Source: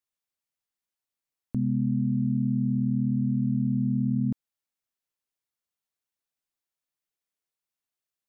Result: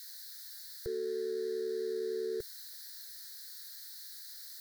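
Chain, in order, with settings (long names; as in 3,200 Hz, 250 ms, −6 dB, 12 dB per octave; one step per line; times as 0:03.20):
spike at every zero crossing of −28 dBFS
drawn EQ curve 100 Hz 0 dB, 150 Hz −21 dB, 220 Hz −6 dB, 330 Hz −10 dB, 480 Hz −15 dB, 720 Hz +15 dB, 1,000 Hz +12 dB, 1,500 Hz −23 dB, 2,300 Hz +9 dB, 3,900 Hz −9 dB
change of speed 1.8×
phaser with its sweep stopped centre 500 Hz, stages 4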